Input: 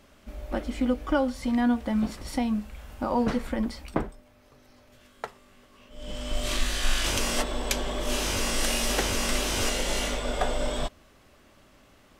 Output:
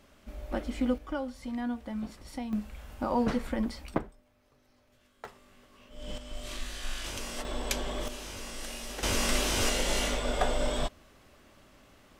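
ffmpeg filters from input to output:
-af "asetnsamples=n=441:p=0,asendcmd='0.98 volume volume -10dB;2.53 volume volume -2.5dB;3.98 volume volume -10dB;5.25 volume volume -2.5dB;6.18 volume volume -11dB;7.45 volume volume -4dB;8.08 volume volume -13.5dB;9.03 volume volume -1dB',volume=0.708"

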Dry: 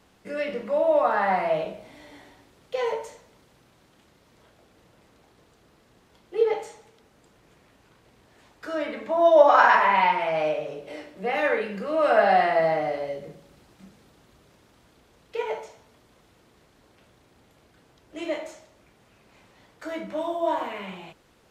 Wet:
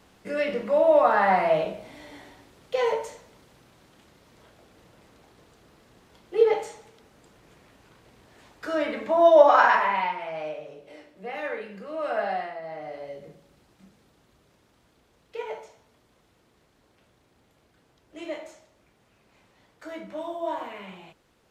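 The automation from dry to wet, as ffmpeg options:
-af "volume=5.62,afade=t=out:st=9.09:d=1.06:silence=0.281838,afade=t=out:st=12.25:d=0.36:silence=0.354813,afade=t=in:st=12.61:d=0.65:silence=0.237137"

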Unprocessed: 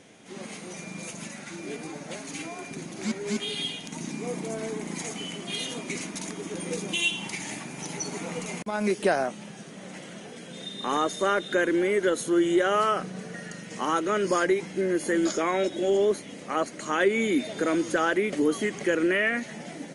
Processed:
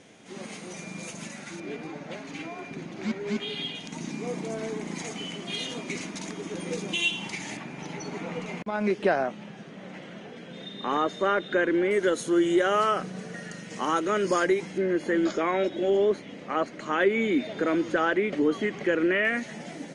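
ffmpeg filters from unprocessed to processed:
-af "asetnsamples=n=441:p=0,asendcmd='1.6 lowpass f 3500;3.75 lowpass f 6200;7.57 lowpass f 3300;11.91 lowpass f 8300;14.78 lowpass f 3600;19.25 lowpass f 8100',lowpass=8700"

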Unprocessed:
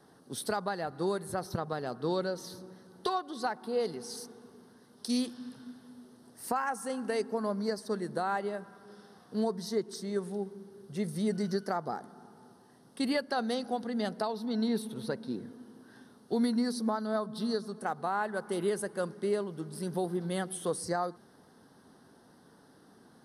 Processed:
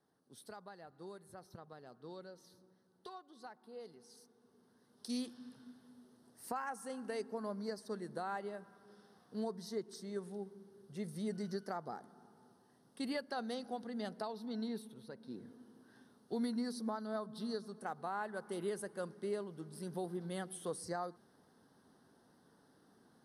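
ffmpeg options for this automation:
-af "volume=0.944,afade=t=in:st=4.33:d=0.76:silence=0.316228,afade=t=out:st=14.52:d=0.56:silence=0.398107,afade=t=in:st=15.08:d=0.41:silence=0.375837"

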